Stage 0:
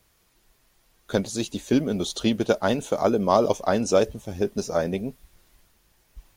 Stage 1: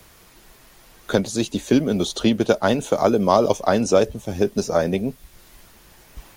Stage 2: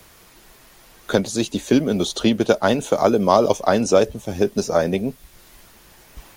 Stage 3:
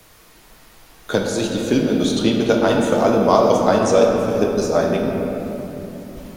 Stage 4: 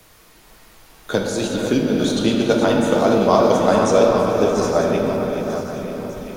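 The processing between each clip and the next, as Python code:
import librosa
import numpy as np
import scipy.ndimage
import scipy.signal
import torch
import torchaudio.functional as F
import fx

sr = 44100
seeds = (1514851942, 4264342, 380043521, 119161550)

y1 = fx.band_squash(x, sr, depth_pct=40)
y1 = y1 * 10.0 ** (4.0 / 20.0)
y2 = fx.low_shelf(y1, sr, hz=170.0, db=-3.0)
y2 = y2 * 10.0 ** (1.5 / 20.0)
y3 = fx.room_shoebox(y2, sr, seeds[0], volume_m3=210.0, walls='hard', distance_m=0.52)
y3 = y3 * 10.0 ** (-1.5 / 20.0)
y4 = fx.reverse_delay_fb(y3, sr, ms=470, feedback_pct=54, wet_db=-8.0)
y4 = fx.echo_stepped(y4, sr, ms=447, hz=1000.0, octaves=0.7, feedback_pct=70, wet_db=-8.0)
y4 = y4 * 10.0 ** (-1.0 / 20.0)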